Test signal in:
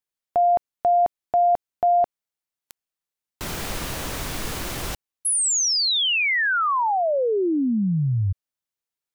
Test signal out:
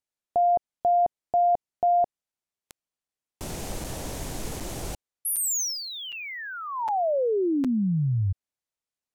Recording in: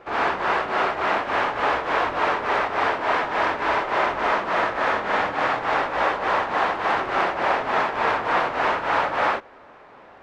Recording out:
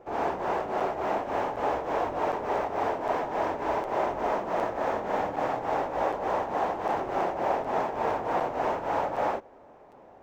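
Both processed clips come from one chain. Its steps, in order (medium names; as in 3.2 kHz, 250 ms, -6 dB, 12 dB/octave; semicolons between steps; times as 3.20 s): high-order bell 2.3 kHz -12 dB 2.4 oct; crackling interface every 0.76 s, samples 256, zero, from 0.80 s; decimation joined by straight lines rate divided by 2×; trim -2.5 dB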